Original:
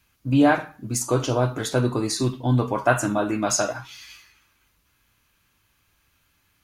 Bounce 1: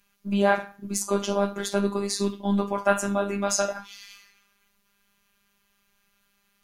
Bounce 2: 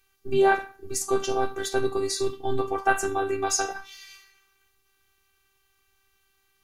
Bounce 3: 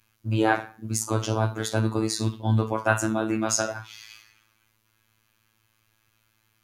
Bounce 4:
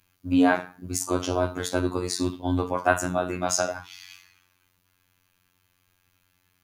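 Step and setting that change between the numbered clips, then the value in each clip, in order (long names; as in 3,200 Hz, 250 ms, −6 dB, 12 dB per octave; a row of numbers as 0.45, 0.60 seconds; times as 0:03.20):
phases set to zero, frequency: 200, 390, 110, 90 Hertz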